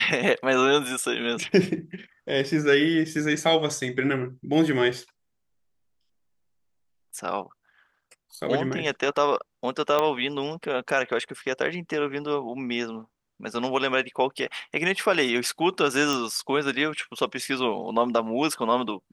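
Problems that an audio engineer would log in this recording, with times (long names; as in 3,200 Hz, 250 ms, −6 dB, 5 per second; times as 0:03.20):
0:09.99: click −10 dBFS
0:16.13: click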